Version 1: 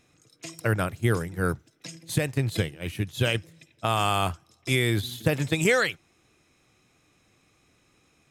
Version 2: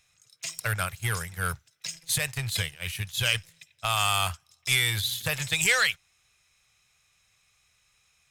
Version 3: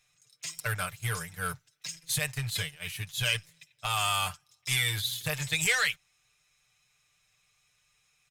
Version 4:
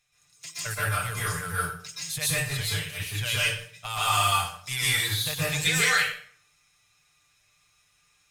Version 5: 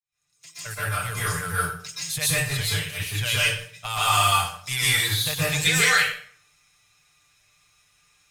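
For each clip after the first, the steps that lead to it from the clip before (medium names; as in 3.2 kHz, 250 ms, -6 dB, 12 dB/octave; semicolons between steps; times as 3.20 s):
waveshaping leveller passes 1; amplifier tone stack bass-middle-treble 10-0-10; trim +4.5 dB
comb 6.7 ms, depth 71%; trim -5 dB
plate-style reverb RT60 0.55 s, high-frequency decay 0.8×, pre-delay 110 ms, DRR -8 dB; trim -3.5 dB
fade-in on the opening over 1.35 s; trim +3.5 dB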